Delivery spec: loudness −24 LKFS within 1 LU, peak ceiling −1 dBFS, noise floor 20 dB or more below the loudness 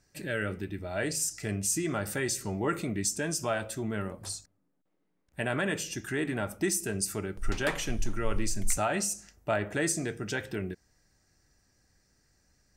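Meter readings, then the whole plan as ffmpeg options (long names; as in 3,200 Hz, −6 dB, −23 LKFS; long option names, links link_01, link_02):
integrated loudness −32.0 LKFS; sample peak −14.5 dBFS; target loudness −24.0 LKFS
→ -af "volume=8dB"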